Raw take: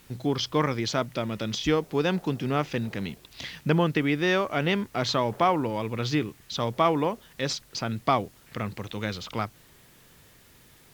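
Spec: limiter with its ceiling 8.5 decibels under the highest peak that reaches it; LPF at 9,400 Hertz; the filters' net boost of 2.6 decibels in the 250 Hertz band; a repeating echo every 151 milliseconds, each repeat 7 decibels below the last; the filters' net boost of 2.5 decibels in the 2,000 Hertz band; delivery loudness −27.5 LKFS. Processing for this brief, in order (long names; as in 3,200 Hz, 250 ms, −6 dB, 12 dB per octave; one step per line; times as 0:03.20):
low-pass filter 9,400 Hz
parametric band 250 Hz +3.5 dB
parametric band 2,000 Hz +3 dB
brickwall limiter −15 dBFS
repeating echo 151 ms, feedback 45%, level −7 dB
level −0.5 dB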